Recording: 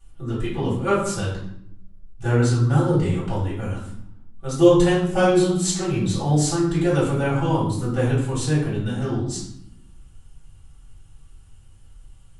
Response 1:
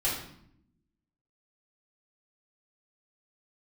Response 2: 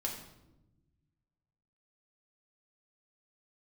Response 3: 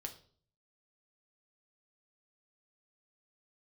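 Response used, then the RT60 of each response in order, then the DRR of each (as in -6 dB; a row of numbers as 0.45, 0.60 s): 1; 0.70, 0.95, 0.50 s; -8.5, -1.5, 3.5 dB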